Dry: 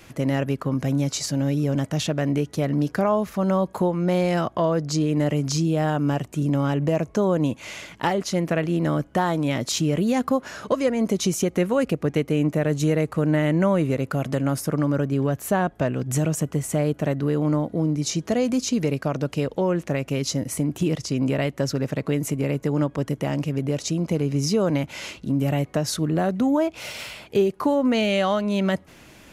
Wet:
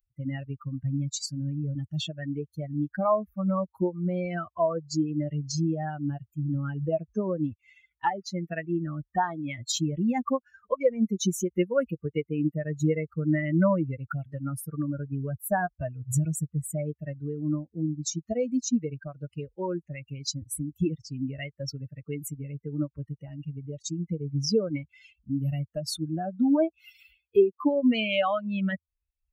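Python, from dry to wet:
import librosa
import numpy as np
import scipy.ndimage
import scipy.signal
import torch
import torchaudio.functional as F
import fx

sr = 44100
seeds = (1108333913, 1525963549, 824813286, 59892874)

y = fx.bin_expand(x, sr, power=3.0)
y = F.gain(torch.from_numpy(y), 3.0).numpy()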